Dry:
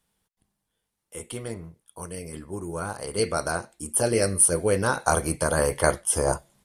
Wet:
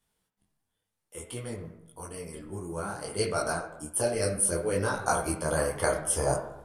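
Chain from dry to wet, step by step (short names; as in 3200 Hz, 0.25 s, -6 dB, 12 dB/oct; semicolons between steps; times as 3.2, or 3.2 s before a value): 3.51–5.9 tremolo 3.9 Hz, depth 39%; reverb RT60 0.90 s, pre-delay 5 ms, DRR 7.5 dB; detuned doubles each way 21 cents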